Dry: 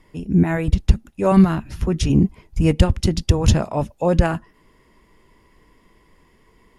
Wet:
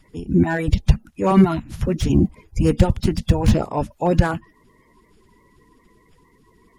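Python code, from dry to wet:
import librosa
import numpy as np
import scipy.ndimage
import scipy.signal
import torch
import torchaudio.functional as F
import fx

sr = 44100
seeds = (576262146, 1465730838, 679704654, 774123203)

y = fx.spec_quant(x, sr, step_db=30)
y = fx.slew_limit(y, sr, full_power_hz=190.0)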